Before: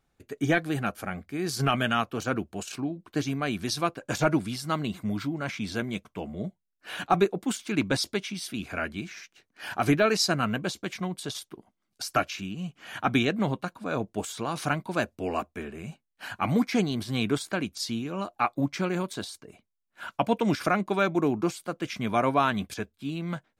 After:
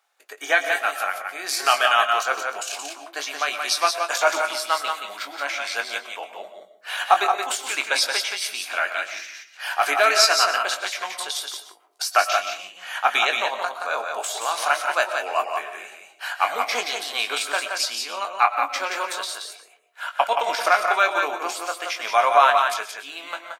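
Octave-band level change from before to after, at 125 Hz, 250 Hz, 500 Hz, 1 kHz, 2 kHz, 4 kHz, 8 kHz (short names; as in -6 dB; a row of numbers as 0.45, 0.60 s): under -35 dB, -18.5 dB, +3.0 dB, +10.0 dB, +10.0 dB, +10.0 dB, +10.0 dB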